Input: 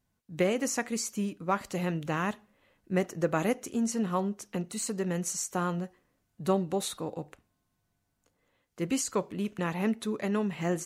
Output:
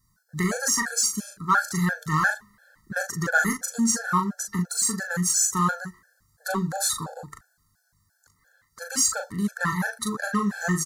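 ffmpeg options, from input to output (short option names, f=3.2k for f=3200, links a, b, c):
-filter_complex "[0:a]firequalizer=gain_entry='entry(130,0);entry(340,-15);entry(1600,13);entry(2500,-21);entry(4400,6)':delay=0.05:min_phase=1,asplit=2[a][b];[b]asoftclip=type=hard:threshold=-30.5dB,volume=-5.5dB[c];[a][c]amix=inputs=2:normalize=0,asplit=2[d][e];[e]adelay=39,volume=-5dB[f];[d][f]amix=inputs=2:normalize=0,afftfilt=real='re*gt(sin(2*PI*2.9*pts/sr)*(1-2*mod(floor(b*sr/1024/450),2)),0)':imag='im*gt(sin(2*PI*2.9*pts/sr)*(1-2*mod(floor(b*sr/1024/450),2)),0)':win_size=1024:overlap=0.75,volume=6.5dB"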